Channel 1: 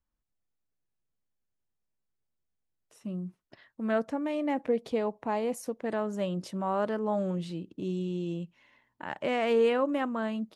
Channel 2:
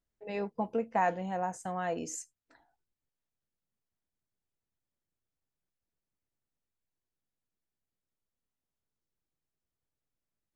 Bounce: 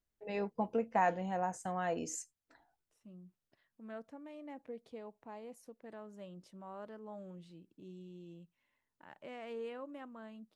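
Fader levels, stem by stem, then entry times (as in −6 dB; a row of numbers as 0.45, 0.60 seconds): −18.5, −2.0 decibels; 0.00, 0.00 seconds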